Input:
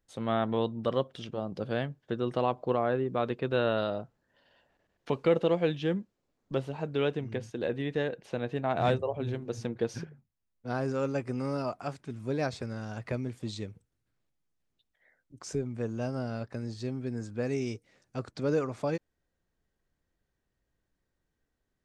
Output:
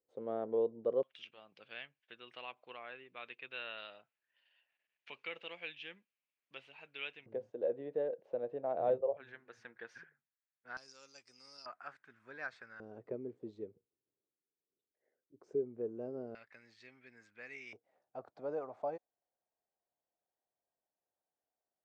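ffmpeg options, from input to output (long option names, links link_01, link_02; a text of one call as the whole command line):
ffmpeg -i in.wav -af "asetnsamples=nb_out_samples=441:pad=0,asendcmd='1.03 bandpass f 2500;7.26 bandpass f 540;9.17 bandpass f 1700;10.77 bandpass f 5200;11.66 bandpass f 1600;12.8 bandpass f 410;16.35 bandpass f 2100;17.73 bandpass f 720',bandpass=frequency=460:width_type=q:width=3.7:csg=0" out.wav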